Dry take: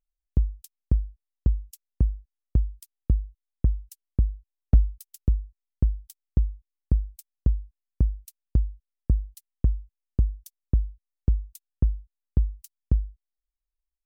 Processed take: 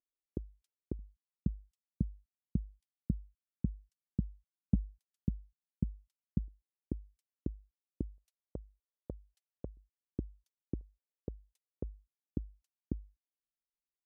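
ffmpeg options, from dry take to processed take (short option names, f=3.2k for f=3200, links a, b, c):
-af "asetnsamples=n=441:p=0,asendcmd='0.99 bandpass f 200;6.48 bandpass f 310;8.18 bandpass f 560;9.77 bandpass f 320;10.81 bandpass f 470;11.83 bandpass f 290',bandpass=f=360:t=q:w=2.3:csg=0"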